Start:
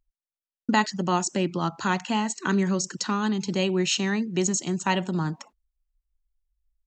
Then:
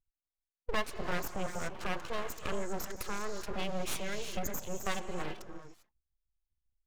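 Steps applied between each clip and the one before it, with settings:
gate on every frequency bin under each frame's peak −20 dB strong
reverb whose tail is shaped and stops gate 420 ms rising, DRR 7 dB
full-wave rectification
level −8.5 dB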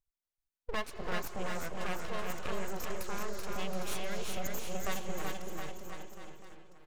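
bouncing-ball delay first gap 380 ms, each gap 0.9×, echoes 5
level −3 dB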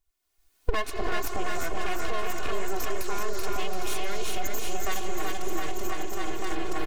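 camcorder AGC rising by 32 dB per second
comb filter 2.8 ms, depth 75%
in parallel at −1.5 dB: brickwall limiter −22.5 dBFS, peak gain reduction 10 dB

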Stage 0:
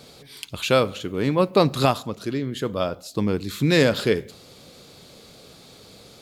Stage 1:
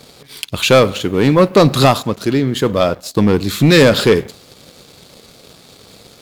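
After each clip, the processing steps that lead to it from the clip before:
leveller curve on the samples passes 2
level +4 dB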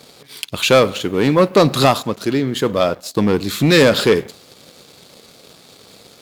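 low-shelf EQ 100 Hz −10.5 dB
level −1.5 dB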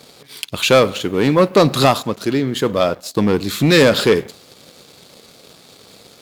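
no processing that can be heard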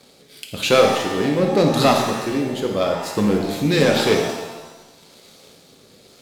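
rotating-speaker cabinet horn 0.9 Hz
reverb with rising layers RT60 1.1 s, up +7 semitones, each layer −8 dB, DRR 1.5 dB
level −4 dB

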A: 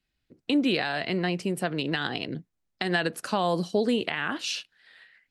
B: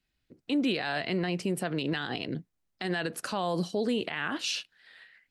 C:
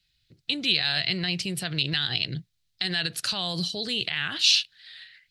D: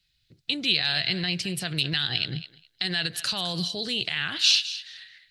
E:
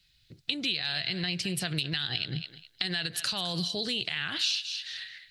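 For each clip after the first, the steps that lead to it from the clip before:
brickwall limiter −20.5 dBFS, peak gain reduction 10 dB
octave-band graphic EQ 125/250/500/1,000/4,000 Hz +7/−12/−9/−9/+12 dB; level +4.5 dB
feedback echo with a high-pass in the loop 209 ms, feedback 16%, high-pass 870 Hz, level −13.5 dB
downward compressor 4 to 1, threshold −34 dBFS, peak gain reduction 15 dB; level +5 dB

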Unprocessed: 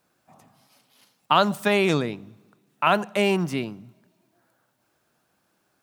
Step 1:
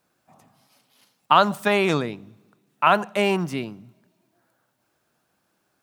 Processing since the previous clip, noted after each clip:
dynamic equaliser 1,100 Hz, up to +5 dB, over −30 dBFS, Q 0.83
level −1 dB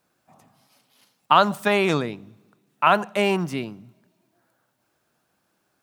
no processing that can be heard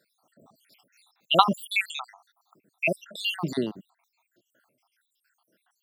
time-frequency cells dropped at random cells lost 80%
Bessel high-pass filter 220 Hz, order 2
level +6 dB

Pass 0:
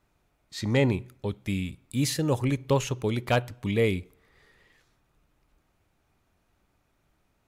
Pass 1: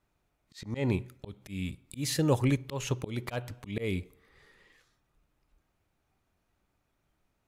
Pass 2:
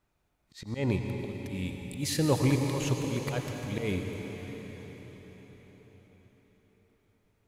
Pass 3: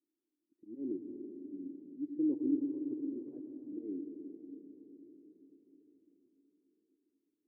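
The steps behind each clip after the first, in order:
noise reduction from a noise print of the clip's start 6 dB; volume swells 210 ms
convolution reverb RT60 5.3 s, pre-delay 83 ms, DRR 3 dB
flat-topped band-pass 310 Hz, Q 3.9

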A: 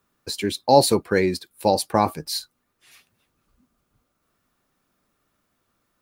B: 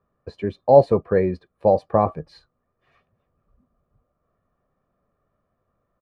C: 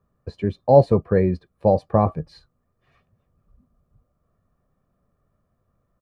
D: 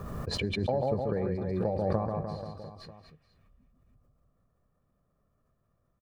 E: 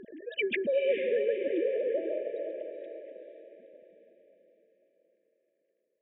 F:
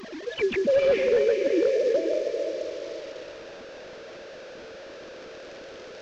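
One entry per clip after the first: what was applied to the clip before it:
low-pass filter 1,000 Hz 12 dB per octave; comb filter 1.7 ms, depth 51%; level +1.5 dB
bass and treble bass +8 dB, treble +4 dB; level −1.5 dB
downward compressor 6 to 1, threshold −20 dBFS, peak gain reduction 13 dB; on a send: reverse bouncing-ball delay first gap 140 ms, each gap 1.15×, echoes 5; on the sum: background raised ahead of every attack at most 26 dB per second; level −7.5 dB
three sine waves on the formant tracks; brick-wall band-stop 660–1,600 Hz; feedback delay with all-pass diffusion 470 ms, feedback 45%, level −6 dB
linear delta modulator 32 kbit/s, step −43 dBFS; level +7 dB

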